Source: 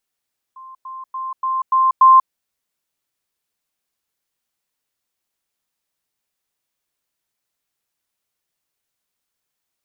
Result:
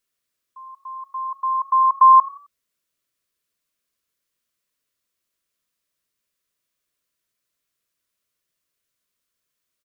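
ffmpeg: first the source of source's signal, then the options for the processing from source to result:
-f lavfi -i "aevalsrc='pow(10,(-35.5+6*floor(t/0.29))/20)*sin(2*PI*1050*t)*clip(min(mod(t,0.29),0.19-mod(t,0.29))/0.005,0,1)':d=1.74:s=44100"
-filter_complex "[0:a]asuperstop=centerf=820:order=4:qfactor=3.2,asplit=4[a][b][c][d];[b]adelay=88,afreqshift=34,volume=-21.5dB[e];[c]adelay=176,afreqshift=68,volume=-30.4dB[f];[d]adelay=264,afreqshift=102,volume=-39.2dB[g];[a][e][f][g]amix=inputs=4:normalize=0"

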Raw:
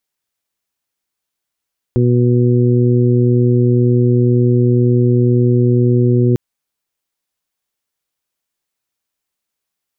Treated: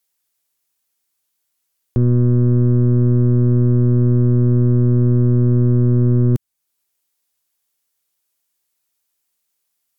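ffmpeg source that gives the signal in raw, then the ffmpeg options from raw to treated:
-f lavfi -i "aevalsrc='0.282*sin(2*PI*122*t)+0.158*sin(2*PI*244*t)+0.168*sin(2*PI*366*t)+0.0562*sin(2*PI*488*t)':d=4.4:s=44100"
-filter_complex "[0:a]aemphasis=mode=production:type=cd,acrossover=split=250[a][b];[a]aeval=exprs='0.299*(cos(1*acos(clip(val(0)/0.299,-1,1)))-cos(1*PI/2))+0.075*(cos(2*acos(clip(val(0)/0.299,-1,1)))-cos(2*PI/2))+0.00668*(cos(6*acos(clip(val(0)/0.299,-1,1)))-cos(6*PI/2))+0.0075*(cos(7*acos(clip(val(0)/0.299,-1,1)))-cos(7*PI/2))+0.00473*(cos(8*acos(clip(val(0)/0.299,-1,1)))-cos(8*PI/2))':c=same[c];[b]alimiter=limit=-19.5dB:level=0:latency=1:release=419[d];[c][d]amix=inputs=2:normalize=0"

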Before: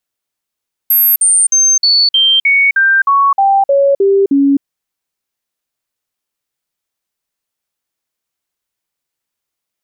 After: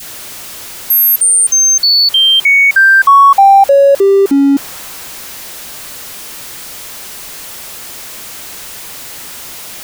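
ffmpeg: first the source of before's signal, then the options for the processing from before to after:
-f lavfi -i "aevalsrc='0.473*clip(min(mod(t,0.31),0.26-mod(t,0.31))/0.005,0,1)*sin(2*PI*12600*pow(2,-floor(t/0.31)/2)*mod(t,0.31))':d=3.72:s=44100"
-af "aeval=exprs='val(0)+0.5*0.0841*sgn(val(0))':c=same,adynamicequalizer=threshold=0.0891:dfrequency=940:dqfactor=0.76:tfrequency=940:tqfactor=0.76:attack=5:release=100:ratio=0.375:range=2.5:mode=boostabove:tftype=bell"

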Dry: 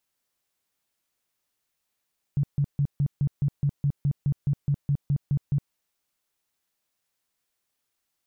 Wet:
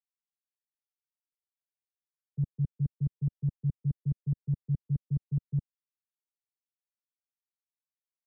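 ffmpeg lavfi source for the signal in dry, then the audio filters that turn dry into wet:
-f lavfi -i "aevalsrc='0.106*sin(2*PI*142*mod(t,0.21))*lt(mod(t,0.21),9/142)':d=3.36:s=44100"
-filter_complex "[0:a]agate=range=-33dB:threshold=-20dB:ratio=3:detection=peak,acrossover=split=140|170|310[a][b][c][d];[d]adynamicsmooth=sensitivity=3.5:basefreq=540[e];[a][b][c][e]amix=inputs=4:normalize=0"

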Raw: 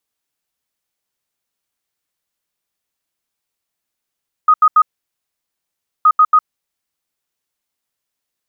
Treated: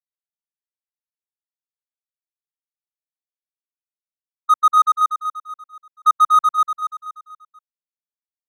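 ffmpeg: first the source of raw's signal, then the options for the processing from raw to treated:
-f lavfi -i "aevalsrc='0.531*sin(2*PI*1250*t)*clip(min(mod(mod(t,1.57),0.14),0.06-mod(mod(t,1.57),0.14))/0.005,0,1)*lt(mod(t,1.57),0.42)':d=3.14:s=44100"
-filter_complex "[0:a]agate=range=-44dB:threshold=-10dB:ratio=16:detection=peak,adynamicsmooth=sensitivity=3:basefreq=1.2k,asplit=2[a][b];[b]aecho=0:1:240|480|720|960|1200:0.708|0.29|0.119|0.0488|0.02[c];[a][c]amix=inputs=2:normalize=0"

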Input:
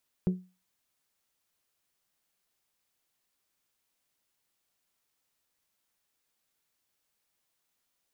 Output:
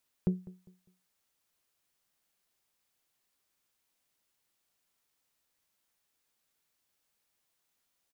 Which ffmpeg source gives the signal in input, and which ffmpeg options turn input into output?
-f lavfi -i "aevalsrc='0.1*pow(10,-3*t/0.31)*sin(2*PI*183*t)+0.0355*pow(10,-3*t/0.191)*sin(2*PI*366*t)+0.0126*pow(10,-3*t/0.168)*sin(2*PI*439.2*t)+0.00447*pow(10,-3*t/0.144)*sin(2*PI*549*t)+0.00158*pow(10,-3*t/0.117)*sin(2*PI*732*t)':d=0.89:s=44100"
-filter_complex "[0:a]asplit=2[a][b];[b]adelay=201,lowpass=f=2k:p=1,volume=-19dB,asplit=2[c][d];[d]adelay=201,lowpass=f=2k:p=1,volume=0.31,asplit=2[e][f];[f]adelay=201,lowpass=f=2k:p=1,volume=0.31[g];[a][c][e][g]amix=inputs=4:normalize=0"

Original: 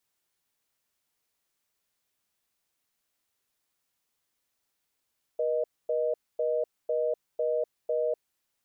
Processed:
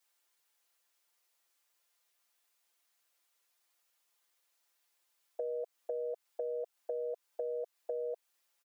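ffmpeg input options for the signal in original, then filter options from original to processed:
-f lavfi -i "aevalsrc='0.0422*(sin(2*PI*480*t)+sin(2*PI*620*t))*clip(min(mod(t,0.5),0.25-mod(t,0.5))/0.005,0,1)':d=2.86:s=44100"
-af "highpass=500,aecho=1:1:5.8:0.85,acompressor=threshold=-35dB:ratio=5"

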